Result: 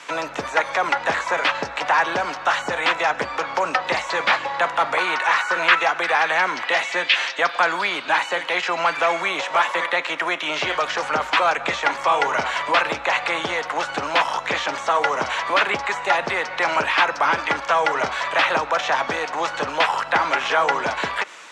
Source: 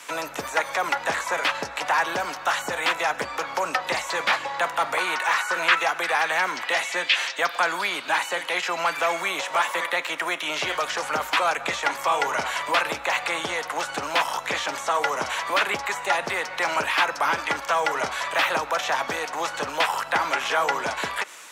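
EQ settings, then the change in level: air absorption 96 m; +4.5 dB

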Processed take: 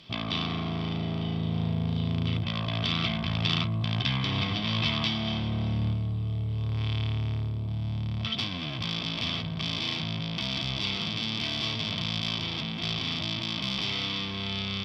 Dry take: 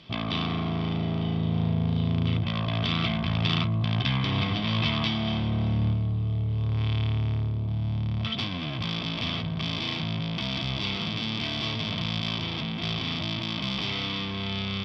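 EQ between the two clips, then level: high shelf 4700 Hz +11 dB; -3.0 dB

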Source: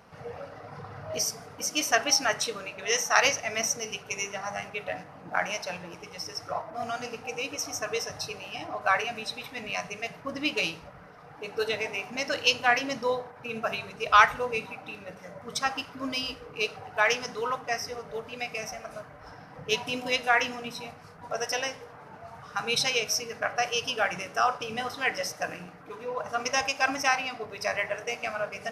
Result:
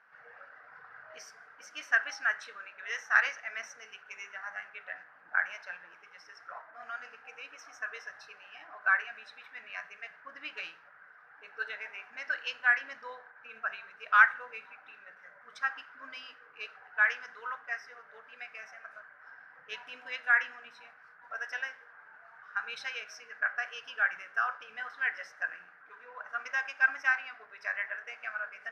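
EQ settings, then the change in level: band-pass 1600 Hz, Q 6.4; +4.5 dB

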